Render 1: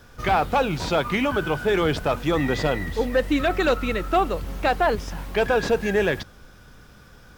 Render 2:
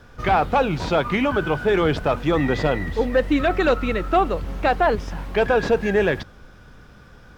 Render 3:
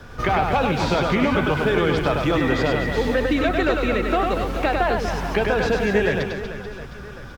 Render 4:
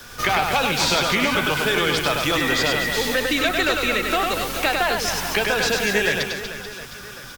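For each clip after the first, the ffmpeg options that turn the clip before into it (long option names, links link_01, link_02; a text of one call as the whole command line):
ffmpeg -i in.wav -af "lowpass=frequency=3000:poles=1,volume=2.5dB" out.wav
ffmpeg -i in.wav -filter_complex "[0:a]acrossover=split=210|1600[link_01][link_02][link_03];[link_01]acompressor=threshold=-34dB:ratio=4[link_04];[link_02]acompressor=threshold=-29dB:ratio=4[link_05];[link_03]acompressor=threshold=-37dB:ratio=4[link_06];[link_04][link_05][link_06]amix=inputs=3:normalize=0,aecho=1:1:100|240|436|710.4|1095:0.631|0.398|0.251|0.158|0.1,volume=6.5dB" out.wav
ffmpeg -i in.wav -filter_complex "[0:a]acrossover=split=100|1300[link_01][link_02][link_03];[link_01]aeval=exprs='max(val(0),0)':channel_layout=same[link_04];[link_04][link_02][link_03]amix=inputs=3:normalize=0,crystalizer=i=10:c=0,volume=-5dB" out.wav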